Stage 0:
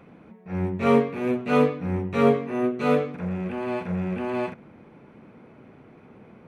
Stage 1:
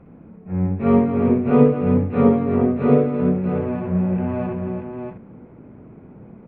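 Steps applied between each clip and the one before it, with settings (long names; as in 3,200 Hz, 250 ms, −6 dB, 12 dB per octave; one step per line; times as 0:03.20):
Gaussian smoothing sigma 2.7 samples
spectral tilt −3 dB per octave
on a send: multi-tap delay 61/228/339/636 ms −3.5/−9/−6/−5.5 dB
on the sum: level −2.5 dB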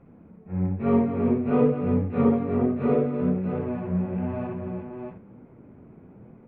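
flanger 1.1 Hz, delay 6.9 ms, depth 7 ms, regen −44%
level −2 dB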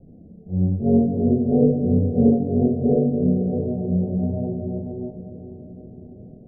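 Butterworth low-pass 740 Hz 72 dB per octave
spectral tilt −2 dB per octave
feedback delay with all-pass diffusion 475 ms, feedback 58%, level −13 dB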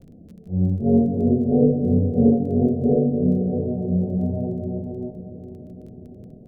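surface crackle 13 per second −43 dBFS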